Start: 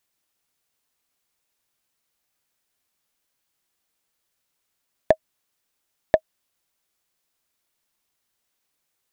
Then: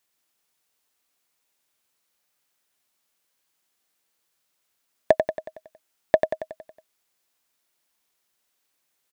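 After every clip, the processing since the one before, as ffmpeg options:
-filter_complex "[0:a]lowshelf=f=130:g=-10,asplit=2[a][b];[b]aecho=0:1:92|184|276|368|460|552|644:0.473|0.256|0.138|0.0745|0.0402|0.0217|0.0117[c];[a][c]amix=inputs=2:normalize=0,volume=1dB"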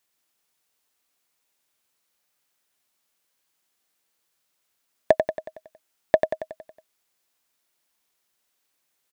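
-af anull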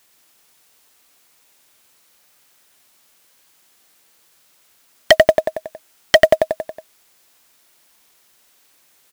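-af "aeval=exprs='0.891*sin(PI/2*5.62*val(0)/0.891)':c=same,acrusher=bits=6:mode=log:mix=0:aa=0.000001,volume=-1dB"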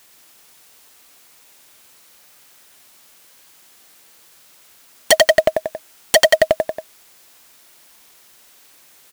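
-af "aeval=exprs='0.316*(abs(mod(val(0)/0.316+3,4)-2)-1)':c=same,volume=7dB"

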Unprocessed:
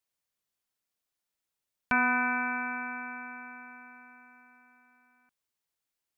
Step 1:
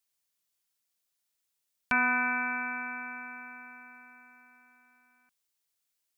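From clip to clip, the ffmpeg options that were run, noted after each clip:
-af "highshelf=f=2.4k:g=9.5,volume=-3dB"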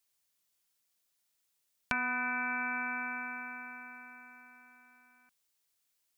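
-af "acompressor=threshold=-33dB:ratio=6,volume=2.5dB"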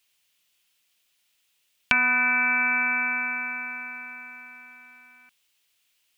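-af "equalizer=f=2.8k:w=1.3:g=12,volume=6dB"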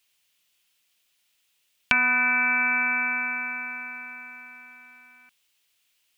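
-af anull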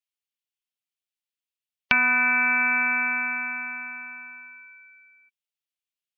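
-af "afftdn=nr=25:nf=-40,volume=1dB"

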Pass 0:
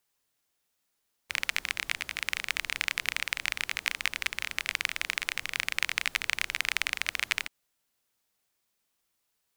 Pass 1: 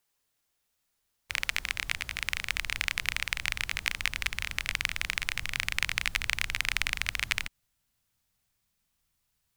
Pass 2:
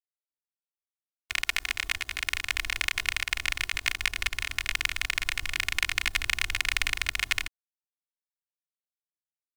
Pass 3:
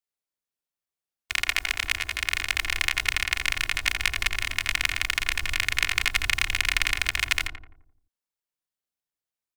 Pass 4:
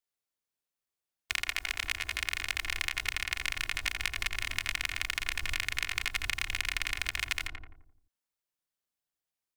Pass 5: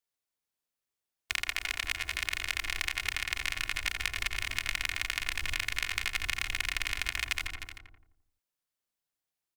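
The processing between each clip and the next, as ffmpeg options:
-af "asubboost=boost=7:cutoff=140"
-af "aeval=exprs='sgn(val(0))*max(abs(val(0))-0.00355,0)':c=same,aecho=1:1:2.8:0.89"
-filter_complex "[0:a]asplit=2[a][b];[b]adelay=86,lowpass=f=1.1k:p=1,volume=-3.5dB,asplit=2[c][d];[d]adelay=86,lowpass=f=1.1k:p=1,volume=0.54,asplit=2[e][f];[f]adelay=86,lowpass=f=1.1k:p=1,volume=0.54,asplit=2[g][h];[h]adelay=86,lowpass=f=1.1k:p=1,volume=0.54,asplit=2[i][j];[j]adelay=86,lowpass=f=1.1k:p=1,volume=0.54,asplit=2[k][l];[l]adelay=86,lowpass=f=1.1k:p=1,volume=0.54,asplit=2[m][n];[n]adelay=86,lowpass=f=1.1k:p=1,volume=0.54[o];[a][c][e][g][i][k][m][o]amix=inputs=8:normalize=0,volume=3dB"
-af "acompressor=threshold=-28dB:ratio=4"
-af "aecho=1:1:307:0.282"

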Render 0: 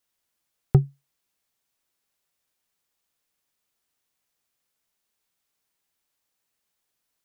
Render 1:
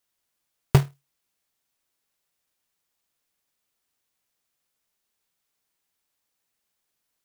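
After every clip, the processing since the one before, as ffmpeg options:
-af "acrusher=bits=2:mode=log:mix=0:aa=0.000001"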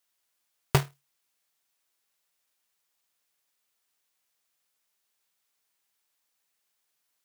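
-af "lowshelf=f=390:g=-10,volume=1.5dB"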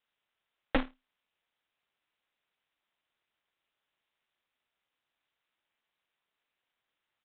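-af "aeval=exprs='0.141*(abs(mod(val(0)/0.141+3,4)-2)-1)':c=same,aresample=8000,aresample=44100,aeval=exprs='val(0)*sin(2*PI*120*n/s)':c=same,volume=2.5dB"

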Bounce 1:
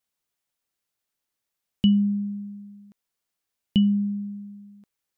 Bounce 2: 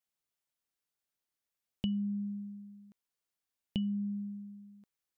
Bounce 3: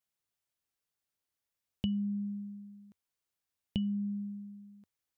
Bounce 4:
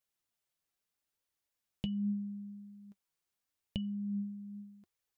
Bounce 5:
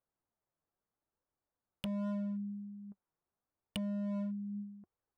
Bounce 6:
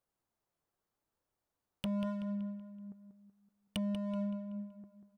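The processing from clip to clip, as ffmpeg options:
-af "acompressor=threshold=-26dB:ratio=3,volume=-7dB"
-af "equalizer=f=87:t=o:w=0.77:g=7"
-filter_complex "[0:a]asplit=2[a][b];[b]acompressor=threshold=-43dB:ratio=6,volume=-3dB[c];[a][c]amix=inputs=2:normalize=0,flanger=delay=1.6:depth=4.9:regen=56:speed=0.8:shape=triangular"
-filter_complex "[0:a]acrossover=split=1400[a][b];[a]asoftclip=type=hard:threshold=-40dB[c];[b]acrusher=bits=5:mix=0:aa=0.5[d];[c][d]amix=inputs=2:normalize=0,volume=5dB"
-filter_complex "[0:a]asplit=2[a][b];[b]asoftclip=type=tanh:threshold=-36dB,volume=-5dB[c];[a][c]amix=inputs=2:normalize=0,asplit=2[d][e];[e]adelay=189,lowpass=f=4.2k:p=1,volume=-8dB,asplit=2[f][g];[g]adelay=189,lowpass=f=4.2k:p=1,volume=0.47,asplit=2[h][i];[i]adelay=189,lowpass=f=4.2k:p=1,volume=0.47,asplit=2[j][k];[k]adelay=189,lowpass=f=4.2k:p=1,volume=0.47,asplit=2[l][m];[m]adelay=189,lowpass=f=4.2k:p=1,volume=0.47[n];[d][f][h][j][l][n]amix=inputs=6:normalize=0,volume=-1dB"

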